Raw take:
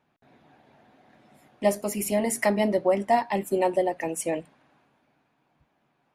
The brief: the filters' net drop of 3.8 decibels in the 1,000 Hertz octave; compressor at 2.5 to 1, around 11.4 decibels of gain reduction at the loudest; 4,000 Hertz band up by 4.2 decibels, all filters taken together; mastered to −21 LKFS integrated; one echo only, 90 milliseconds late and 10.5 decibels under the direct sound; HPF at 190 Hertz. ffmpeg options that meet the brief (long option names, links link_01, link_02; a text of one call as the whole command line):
ffmpeg -i in.wav -af "highpass=190,equalizer=frequency=1000:width_type=o:gain=-6,equalizer=frequency=4000:width_type=o:gain=6.5,acompressor=threshold=-37dB:ratio=2.5,aecho=1:1:90:0.299,volume=15.5dB" out.wav